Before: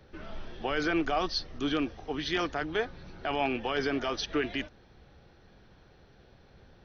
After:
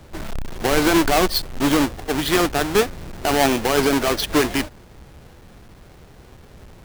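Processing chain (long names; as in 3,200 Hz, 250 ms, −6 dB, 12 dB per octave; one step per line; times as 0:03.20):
each half-wave held at its own peak
level +7.5 dB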